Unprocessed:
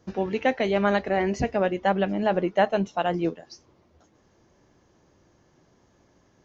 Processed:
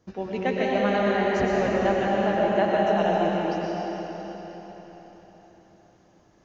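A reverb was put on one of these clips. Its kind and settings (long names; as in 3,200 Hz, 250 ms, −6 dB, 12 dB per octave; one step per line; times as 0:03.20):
comb and all-pass reverb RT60 4.4 s, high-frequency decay 0.95×, pre-delay 75 ms, DRR −5 dB
level −5 dB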